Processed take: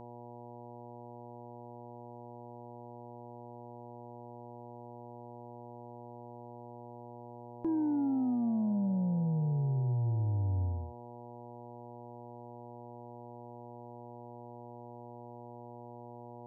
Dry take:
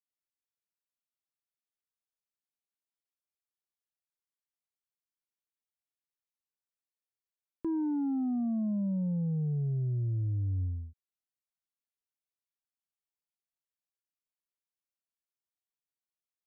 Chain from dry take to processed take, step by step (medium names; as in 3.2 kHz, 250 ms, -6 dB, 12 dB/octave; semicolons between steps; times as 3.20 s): mains buzz 120 Hz, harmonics 8, -48 dBFS -1 dB/octave